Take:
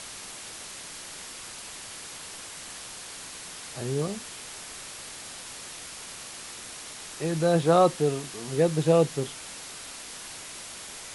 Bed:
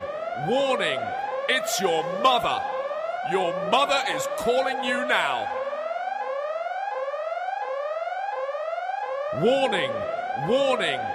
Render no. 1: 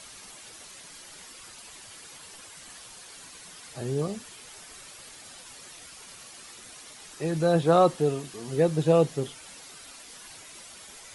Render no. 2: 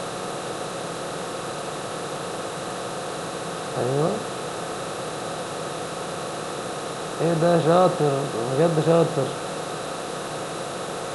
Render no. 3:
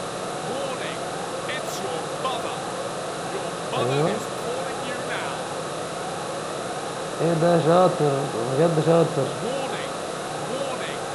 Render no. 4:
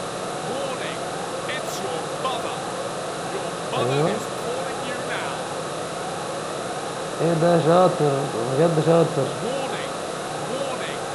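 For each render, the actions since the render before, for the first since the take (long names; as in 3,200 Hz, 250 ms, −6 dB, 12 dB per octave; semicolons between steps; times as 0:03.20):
broadband denoise 9 dB, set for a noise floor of −42 dBFS
compressor on every frequency bin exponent 0.4
mix in bed −8.5 dB
level +1 dB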